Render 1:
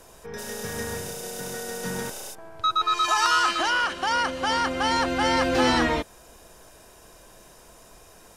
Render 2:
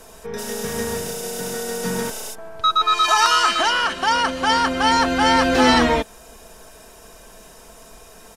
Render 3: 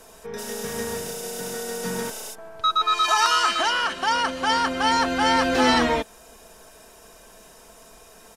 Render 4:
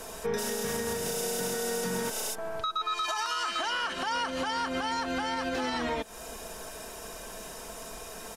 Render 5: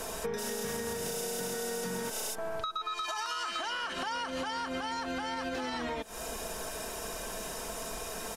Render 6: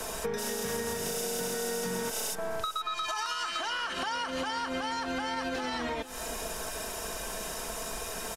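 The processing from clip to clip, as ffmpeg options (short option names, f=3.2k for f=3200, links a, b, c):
-af "aecho=1:1:4.5:0.45,volume=5dB"
-af "lowshelf=f=140:g=-5,volume=-3.5dB"
-af "acompressor=threshold=-27dB:ratio=6,alimiter=level_in=4.5dB:limit=-24dB:level=0:latency=1:release=281,volume=-4.5dB,volume=6.5dB"
-af "acompressor=threshold=-36dB:ratio=6,volume=3.5dB"
-filter_complex "[0:a]acrossover=split=110|820|4200[a][b][c][d];[b]aeval=exprs='sgn(val(0))*max(abs(val(0))-0.00168,0)':c=same[e];[a][e][c][d]amix=inputs=4:normalize=0,aecho=1:1:467:0.178,volume=2.5dB"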